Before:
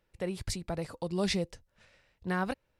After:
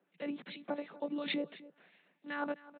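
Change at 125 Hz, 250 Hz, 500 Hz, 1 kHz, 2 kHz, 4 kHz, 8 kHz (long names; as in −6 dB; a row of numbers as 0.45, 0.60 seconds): −22.5 dB, −4.0 dB, −5.0 dB, −5.0 dB, −3.0 dB, −5.5 dB, below −35 dB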